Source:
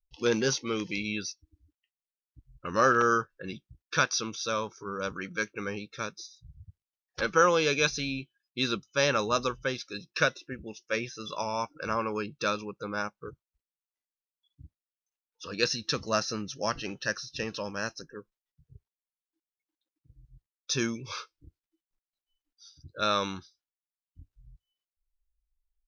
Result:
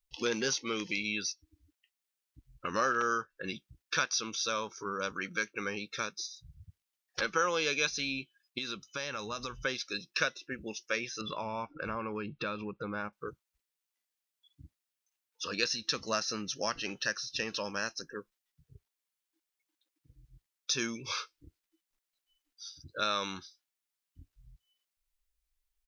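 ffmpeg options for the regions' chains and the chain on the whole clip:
-filter_complex "[0:a]asettb=1/sr,asplit=3[s0][s1][s2];[s0]atrim=end=8.584[s3];[s1]atrim=start=8.58:end=9.65,asetpts=PTS-STARTPTS,afade=t=in:d=0.004:c=qsin,afade=t=out:st=1.066:d=0.004:c=qsin,asubboost=boost=7.5:cutoff=190,acompressor=threshold=0.0126:ratio=4:attack=3.2:release=140:knee=1:detection=peak[s4];[s2]atrim=start=9.646[s5];[s3][s4]acrossfade=d=0.004:c1=hsin:c2=qsin[s6];[s6][s5]acrossfade=d=0.004:c1=qsin:c2=hsin,asettb=1/sr,asplit=3[s7][s8][s9];[s7]atrim=end=11.214[s10];[s8]atrim=start=11.21:end=13.13,asetpts=PTS-STARTPTS,afade=t=in:d=0.004:c=qsin,afade=t=out:st=1.916:d=0.004:c=qsin,lowpass=f=4000:w=0.5412,lowpass=f=4000:w=1.3066,aemphasis=mode=reproduction:type=bsi,acompressor=threshold=0.0158:ratio=2:attack=3.2:release=140:knee=1:detection=peak[s11];[s9]atrim=start=13.126[s12];[s10][s11]acrossfade=d=0.004:c1=hsin:c2=qsin[s13];[s13][s12]acrossfade=d=0.004:c1=qsin:c2=hsin,firequalizer=gain_entry='entry(130,0);entry(210,5);entry(2000,11)':delay=0.05:min_phase=1,acompressor=threshold=0.0251:ratio=2,volume=0.668"

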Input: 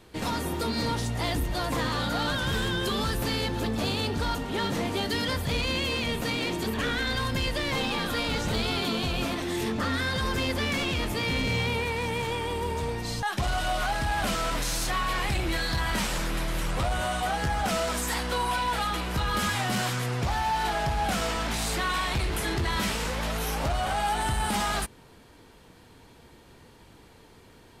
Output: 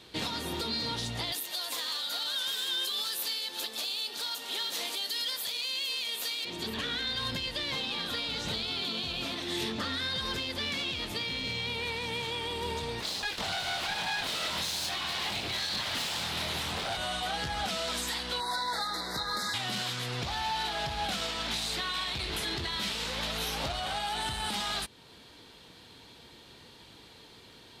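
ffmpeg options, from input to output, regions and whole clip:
-filter_complex "[0:a]asettb=1/sr,asplit=3[s0][s1][s2];[s0]atrim=end=1.324[s3];[s1]atrim=start=1.32:end=6.45,asetpts=PTS-STARTPTS,afade=t=in:d=0.004:c=qsin,afade=t=out:st=5.126:d=0.004:c=qsin,highpass=470,aemphasis=mode=production:type=75fm[s4];[s2]atrim=start=6.446[s5];[s3][s4]acrossfade=d=0.004:c1=hsin:c2=qsin[s6];[s6][s5]acrossfade=d=0.004:c1=qsin:c2=hsin,asettb=1/sr,asplit=3[s7][s8][s9];[s7]atrim=end=13.004[s10];[s8]atrim=start=13:end=16.97,asetpts=PTS-STARTPTS,afade=t=in:d=0.004:c=qsin,afade=t=out:st=3.966:d=0.004:c=qsin,equalizer=f=830:t=o:w=0.36:g=6,asplit=2[s11][s12];[s12]adelay=23,volume=0.708[s13];[s11][s13]amix=inputs=2:normalize=0,atrim=end_sample=175077,aeval=exprs='abs(val(0))':c=same[s14];[s9]atrim=start=16.966[s15];[s10][s14]acrossfade=d=0.004:c1=hsin:c2=qsin[s16];[s16][s15]acrossfade=d=0.004:c1=qsin:c2=hsin,asettb=1/sr,asplit=3[s17][s18][s19];[s17]atrim=end=18.404[s20];[s18]atrim=start=18.4:end=19.54,asetpts=PTS-STARTPTS,afade=t=in:d=0.004:c=qsin,afade=t=out:st=1.136:d=0.004:c=qsin,asuperstop=centerf=2800:order=12:qfactor=1.8,equalizer=f=75:w=0.52:g=-11[s21];[s19]atrim=start=19.536[s22];[s20][s21]acrossfade=d=0.004:c1=hsin:c2=qsin[s23];[s23][s22]acrossfade=d=0.004:c1=qsin:c2=hsin,highpass=f=94:p=1,equalizer=f=3800:w=1.3:g=12.5,alimiter=limit=0.0841:level=0:latency=1:release=404,volume=0.794"

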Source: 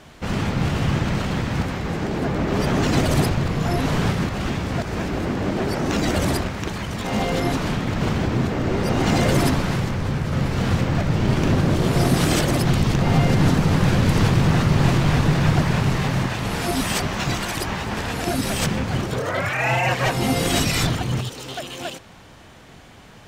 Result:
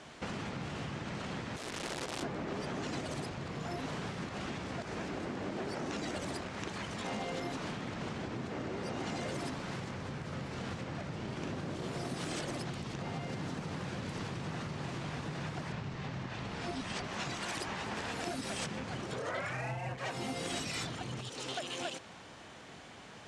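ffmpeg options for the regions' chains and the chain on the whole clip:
-filter_complex "[0:a]asettb=1/sr,asplit=3[s0][s1][s2];[s0]atrim=end=1.564[s3];[s1]atrim=start=1.56:end=2.23,asetpts=PTS-STARTPTS,afade=t=in:d=0.004:c=qsin,afade=t=out:st=0.666:d=0.004:c=qsin,aemphasis=mode=reproduction:type=50kf,acrossover=split=160|3000[s4][s5][s6];[s5]acompressor=threshold=0.0112:ratio=5:attack=3.2:release=140:knee=2.83:detection=peak[s7];[s4][s7][s6]amix=inputs=3:normalize=0,aeval=exprs='(mod(22.4*val(0)+1,2)-1)/22.4':c=same[s8];[s2]atrim=start=2.226[s9];[s3][s8]acrossfade=d=0.004:c1=hsin:c2=qsin[s10];[s10][s9]acrossfade=d=0.004:c1=qsin:c2=hsin,asettb=1/sr,asplit=3[s11][s12][s13];[s11]atrim=end=15.724[s14];[s12]atrim=start=15.72:end=17.04,asetpts=PTS-STARTPTS,afade=t=in:d=0.004:c=qsin,afade=t=out:st=1.316:d=0.004:c=qsin,lowpass=5900,lowshelf=f=150:g=8.5[s15];[s13]atrim=start=17.036[s16];[s14][s15]acrossfade=d=0.004:c1=hsin:c2=qsin[s17];[s17][s16]acrossfade=d=0.004:c1=qsin:c2=hsin,asettb=1/sr,asplit=3[s18][s19][s20];[s18]atrim=end=19.504[s21];[s19]atrim=start=19.5:end=19.98,asetpts=PTS-STARTPTS,afade=t=in:d=0.004:c=qsin,afade=t=out:st=0.476:d=0.004:c=qsin,aemphasis=mode=reproduction:type=riaa,adynamicsmooth=sensitivity=7:basefreq=990[s22];[s20]atrim=start=19.976[s23];[s21][s22]acrossfade=d=0.004:c1=hsin:c2=qsin[s24];[s24][s23]acrossfade=d=0.004:c1=qsin:c2=hsin,lowpass=f=9400:w=0.5412,lowpass=f=9400:w=1.3066,acompressor=threshold=0.0316:ratio=5,highpass=f=220:p=1,volume=0.631"

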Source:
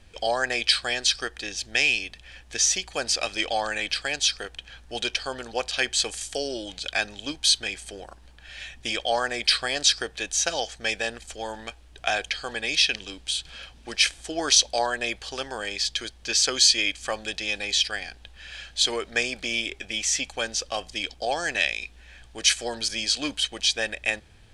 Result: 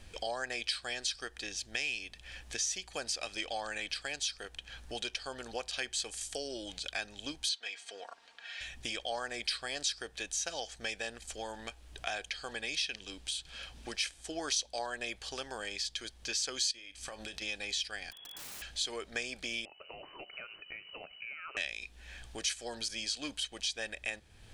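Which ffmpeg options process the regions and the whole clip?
-filter_complex "[0:a]asettb=1/sr,asplit=3[s0][s1][s2];[s0]atrim=end=7.494[s3];[s1]atrim=start=7.49:end=8.61,asetpts=PTS-STARTPTS,afade=t=in:d=0.004:c=qsin,afade=t=out:st=1.116:d=0.004:c=qsin,highpass=660,lowpass=5100,aecho=1:1:4.3:0.59,atrim=end_sample=49392[s4];[s2]atrim=start=8.606[s5];[s3][s4]acrossfade=d=0.004:c1=hsin:c2=qsin[s6];[s6][s5]acrossfade=d=0.004:c1=qsin:c2=hsin,asettb=1/sr,asplit=3[s7][s8][s9];[s7]atrim=end=16.714[s10];[s8]atrim=start=16.71:end=17.42,asetpts=PTS-STARTPTS,afade=t=in:d=0.004:c=qsin,afade=t=out:st=0.706:d=0.004:c=qsin,bandreject=f=7000:w=13,acompressor=threshold=0.02:ratio=8:attack=3.2:release=140:knee=1:detection=peak,asplit=2[s11][s12];[s12]adelay=31,volume=0.2[s13];[s11][s13]amix=inputs=2:normalize=0,atrim=end_sample=31311[s14];[s9]atrim=start=17.416[s15];[s10][s14]acrossfade=d=0.004:c1=hsin:c2=qsin[s16];[s16][s15]acrossfade=d=0.004:c1=qsin:c2=hsin,asettb=1/sr,asplit=3[s17][s18][s19];[s17]atrim=end=18.114[s20];[s18]atrim=start=18.11:end=18.62,asetpts=PTS-STARTPTS,afade=t=in:d=0.004:c=qsin,afade=t=out:st=0.506:d=0.004:c=qsin,aemphasis=mode=production:type=75kf,lowpass=f=2900:t=q:w=0.5098,lowpass=f=2900:t=q:w=0.6013,lowpass=f=2900:t=q:w=0.9,lowpass=f=2900:t=q:w=2.563,afreqshift=-3400,aeval=exprs='(mod(112*val(0)+1,2)-1)/112':c=same[s21];[s19]atrim=start=18.616[s22];[s20][s21]acrossfade=d=0.004:c1=hsin:c2=qsin[s23];[s23][s22]acrossfade=d=0.004:c1=qsin:c2=hsin,asettb=1/sr,asplit=3[s24][s25][s26];[s24]atrim=end=19.654[s27];[s25]atrim=start=19.65:end=21.57,asetpts=PTS-STARTPTS,afade=t=in:d=0.004:c=qsin,afade=t=out:st=1.916:d=0.004:c=qsin,acompressor=threshold=0.0126:ratio=3:attack=3.2:release=140:knee=1:detection=peak,aeval=exprs='(tanh(15.8*val(0)+0.5)-tanh(0.5))/15.8':c=same,lowpass=f=2600:t=q:w=0.5098,lowpass=f=2600:t=q:w=0.6013,lowpass=f=2600:t=q:w=0.9,lowpass=f=2600:t=q:w=2.563,afreqshift=-3000[s28];[s26]atrim=start=21.566[s29];[s27][s28]acrossfade=d=0.004:c1=hsin:c2=qsin[s30];[s30][s29]acrossfade=d=0.004:c1=qsin:c2=hsin,highshelf=f=6900:g=5.5,acompressor=threshold=0.00631:ratio=2"

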